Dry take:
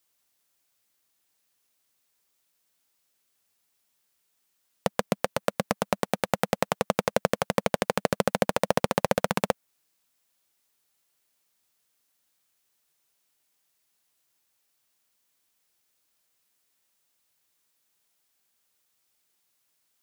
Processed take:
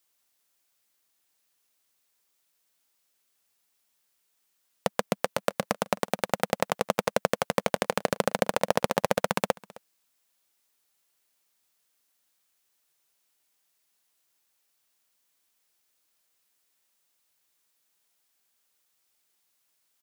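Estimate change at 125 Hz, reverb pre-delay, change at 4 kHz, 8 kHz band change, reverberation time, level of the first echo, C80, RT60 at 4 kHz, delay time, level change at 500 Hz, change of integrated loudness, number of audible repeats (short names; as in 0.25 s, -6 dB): -3.5 dB, none, 0.0 dB, 0.0 dB, none, -22.5 dB, none, none, 0.263 s, -0.5 dB, -0.5 dB, 1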